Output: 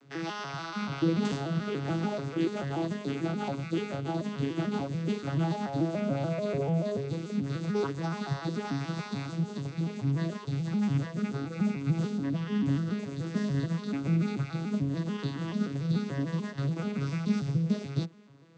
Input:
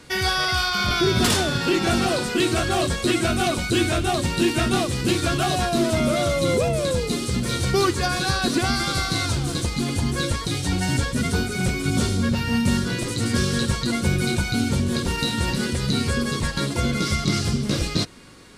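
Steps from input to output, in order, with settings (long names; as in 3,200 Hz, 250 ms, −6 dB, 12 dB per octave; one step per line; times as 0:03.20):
vocoder with an arpeggio as carrier minor triad, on C#3, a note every 145 ms
level −7 dB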